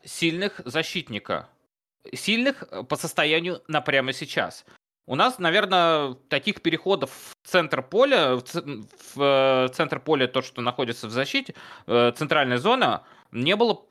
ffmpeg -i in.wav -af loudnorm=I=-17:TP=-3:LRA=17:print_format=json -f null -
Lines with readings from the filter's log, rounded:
"input_i" : "-23.4",
"input_tp" : "-6.8",
"input_lra" : "2.5",
"input_thresh" : "-33.9",